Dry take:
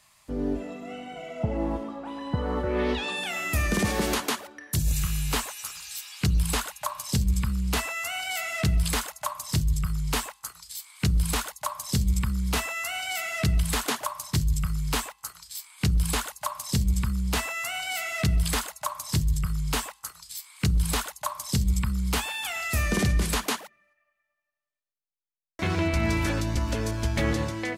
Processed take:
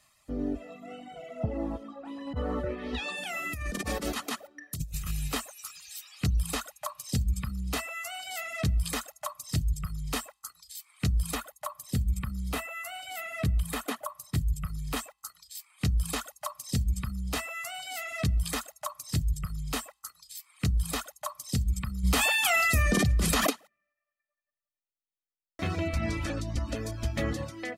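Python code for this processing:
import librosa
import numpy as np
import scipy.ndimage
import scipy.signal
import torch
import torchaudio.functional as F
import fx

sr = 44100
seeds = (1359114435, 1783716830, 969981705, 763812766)

y = fx.over_compress(x, sr, threshold_db=-27.0, ratio=-0.5, at=(2.27, 5.28))
y = fx.dynamic_eq(y, sr, hz=5600.0, q=1.1, threshold_db=-47.0, ratio=4.0, max_db=-8, at=(11.35, 14.97))
y = fx.env_flatten(y, sr, amount_pct=100, at=(22.03, 23.49), fade=0.02)
y = fx.lowpass(y, sr, hz=10000.0, slope=12, at=(25.99, 26.76))
y = fx.peak_eq(y, sr, hz=280.0, db=10.5, octaves=0.53)
y = y + 0.46 * np.pad(y, (int(1.6 * sr / 1000.0), 0))[:len(y)]
y = fx.dereverb_blind(y, sr, rt60_s=0.83)
y = y * librosa.db_to_amplitude(-5.5)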